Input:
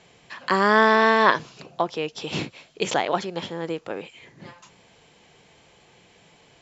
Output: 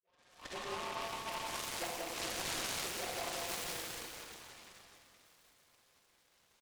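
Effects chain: delay that grows with frequency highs late, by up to 680 ms; Doppler pass-by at 1.49 s, 11 m/s, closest 6.4 m; high-pass 940 Hz 12 dB/octave; comb 5.6 ms, depth 72%; compression 8:1, threshold -39 dBFS, peak gain reduction 22.5 dB; touch-sensitive flanger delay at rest 2 ms, full sweep at -42 dBFS; treble shelf 5.4 kHz +9 dB; loudspeakers at several distances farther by 47 m -11 dB, 62 m -3 dB; Schroeder reverb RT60 2.1 s, DRR -2 dB; delay time shaken by noise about 1.6 kHz, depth 0.11 ms

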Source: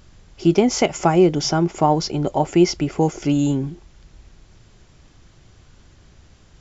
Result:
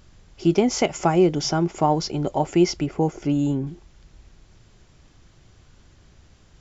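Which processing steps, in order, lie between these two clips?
2.86–3.67 s: treble shelf 2.4 kHz -8.5 dB; trim -3 dB

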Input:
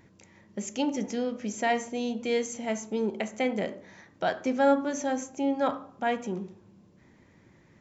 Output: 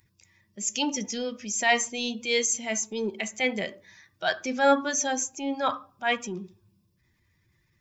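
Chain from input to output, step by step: expander on every frequency bin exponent 1.5; tilt shelf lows -8.5 dB, about 1.1 kHz; transient shaper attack -6 dB, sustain +2 dB; trim +8 dB

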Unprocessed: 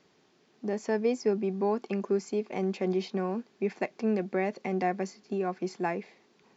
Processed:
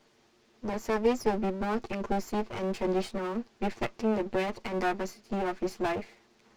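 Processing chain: comb filter that takes the minimum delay 8.7 ms; trim +2.5 dB

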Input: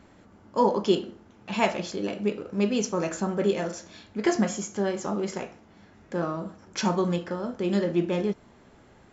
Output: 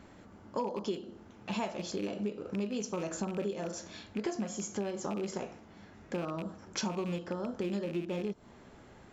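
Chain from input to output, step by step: rattle on loud lows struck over -32 dBFS, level -26 dBFS; dynamic bell 2 kHz, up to -6 dB, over -48 dBFS, Q 1.4; compression 6:1, threshold -32 dBFS, peak gain reduction 15 dB

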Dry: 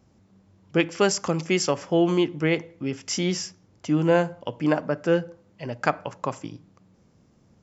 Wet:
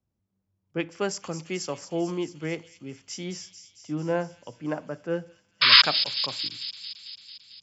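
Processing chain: 5.61–5.82 s: painted sound noise 960–5200 Hz -12 dBFS; 5.72–6.41 s: treble shelf 3.3 kHz +9 dB; on a send: feedback echo behind a high-pass 223 ms, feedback 76%, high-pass 4.3 kHz, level -6 dB; on the sum: three bands expanded up and down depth 40%; trim -8.5 dB

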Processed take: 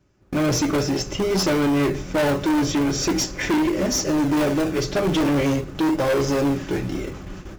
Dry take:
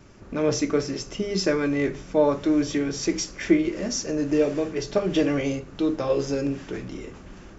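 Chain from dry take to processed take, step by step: in parallel at -8.5 dB: decimation with a swept rate 32×, swing 100% 0.45 Hz; on the sum: gate with hold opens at -31 dBFS; comb of notches 230 Hz; overload inside the chain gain 25 dB; trim +7.5 dB

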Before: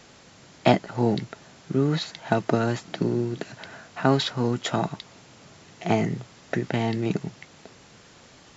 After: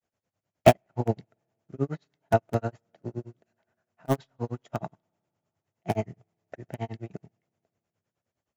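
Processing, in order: in parallel at -5 dB: integer overflow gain 11 dB; on the sum: granulator 117 ms, grains 9.6 per s, spray 12 ms, pitch spread up and down by 0 st; fifteen-band graphic EQ 100 Hz +9 dB, 630 Hz +7 dB, 4 kHz -7 dB; spring tank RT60 3.5 s, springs 30/48 ms, chirp 50 ms, DRR 19.5 dB; upward expansion 2.5:1, over -34 dBFS

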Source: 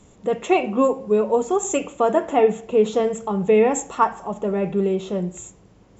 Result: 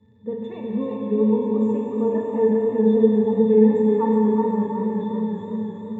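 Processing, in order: high-pass 94 Hz; bass shelf 160 Hz -6.5 dB; crackle 72 per s -35 dBFS; tone controls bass +12 dB, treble -3 dB; pitch-class resonator A, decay 0.12 s; on a send: multi-head delay 195 ms, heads first and third, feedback 68%, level -11.5 dB; on the sum: Schroeder reverb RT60 3.6 s, combs from 33 ms, DRR -0.5 dB; modulated delay 368 ms, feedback 34%, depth 53 cents, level -5.5 dB

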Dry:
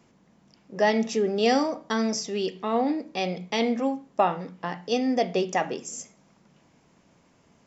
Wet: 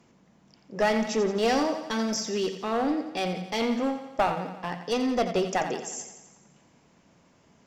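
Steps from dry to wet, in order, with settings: one-sided clip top -23 dBFS; on a send: thinning echo 87 ms, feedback 60%, high-pass 170 Hz, level -10 dB

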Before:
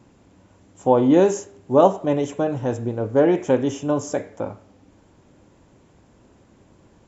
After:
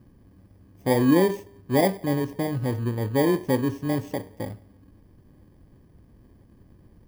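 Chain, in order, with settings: bit-reversed sample order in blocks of 32 samples; tilt EQ -3 dB/octave; trim -7 dB

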